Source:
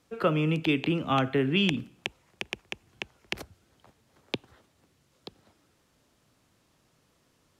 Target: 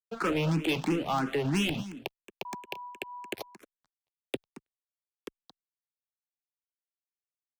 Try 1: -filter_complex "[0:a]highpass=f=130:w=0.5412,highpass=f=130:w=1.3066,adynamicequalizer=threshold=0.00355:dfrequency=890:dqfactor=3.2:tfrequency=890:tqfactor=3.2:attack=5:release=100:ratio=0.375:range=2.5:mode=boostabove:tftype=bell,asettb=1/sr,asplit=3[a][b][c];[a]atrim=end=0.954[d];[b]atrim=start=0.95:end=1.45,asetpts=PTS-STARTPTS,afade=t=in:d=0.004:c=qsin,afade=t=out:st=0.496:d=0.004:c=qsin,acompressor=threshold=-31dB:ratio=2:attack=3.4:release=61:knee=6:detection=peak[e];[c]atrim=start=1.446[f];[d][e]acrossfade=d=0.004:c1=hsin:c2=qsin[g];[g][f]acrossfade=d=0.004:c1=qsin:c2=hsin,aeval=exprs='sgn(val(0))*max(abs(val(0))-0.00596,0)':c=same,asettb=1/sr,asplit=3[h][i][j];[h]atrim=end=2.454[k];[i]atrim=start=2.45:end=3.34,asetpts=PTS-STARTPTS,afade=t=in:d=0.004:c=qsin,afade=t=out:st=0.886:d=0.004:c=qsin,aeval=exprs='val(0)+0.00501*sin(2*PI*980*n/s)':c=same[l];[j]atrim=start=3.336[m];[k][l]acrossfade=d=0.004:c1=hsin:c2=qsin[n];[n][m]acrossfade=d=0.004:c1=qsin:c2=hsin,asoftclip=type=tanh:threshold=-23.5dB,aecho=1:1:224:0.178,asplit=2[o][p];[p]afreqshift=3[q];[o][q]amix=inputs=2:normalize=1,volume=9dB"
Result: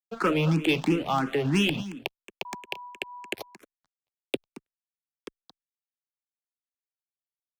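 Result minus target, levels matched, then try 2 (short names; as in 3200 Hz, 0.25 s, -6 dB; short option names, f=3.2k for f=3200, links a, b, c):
soft clip: distortion -5 dB
-filter_complex "[0:a]highpass=f=130:w=0.5412,highpass=f=130:w=1.3066,adynamicequalizer=threshold=0.00355:dfrequency=890:dqfactor=3.2:tfrequency=890:tqfactor=3.2:attack=5:release=100:ratio=0.375:range=2.5:mode=boostabove:tftype=bell,asettb=1/sr,asplit=3[a][b][c];[a]atrim=end=0.954[d];[b]atrim=start=0.95:end=1.45,asetpts=PTS-STARTPTS,afade=t=in:d=0.004:c=qsin,afade=t=out:st=0.496:d=0.004:c=qsin,acompressor=threshold=-31dB:ratio=2:attack=3.4:release=61:knee=6:detection=peak[e];[c]atrim=start=1.446[f];[d][e]acrossfade=d=0.004:c1=hsin:c2=qsin[g];[g][f]acrossfade=d=0.004:c1=qsin:c2=hsin,aeval=exprs='sgn(val(0))*max(abs(val(0))-0.00596,0)':c=same,asettb=1/sr,asplit=3[h][i][j];[h]atrim=end=2.454[k];[i]atrim=start=2.45:end=3.34,asetpts=PTS-STARTPTS,afade=t=in:d=0.004:c=qsin,afade=t=out:st=0.886:d=0.004:c=qsin,aeval=exprs='val(0)+0.00501*sin(2*PI*980*n/s)':c=same[l];[j]atrim=start=3.336[m];[k][l]acrossfade=d=0.004:c1=hsin:c2=qsin[n];[n][m]acrossfade=d=0.004:c1=qsin:c2=hsin,asoftclip=type=tanh:threshold=-30.5dB,aecho=1:1:224:0.178,asplit=2[o][p];[p]afreqshift=3[q];[o][q]amix=inputs=2:normalize=1,volume=9dB"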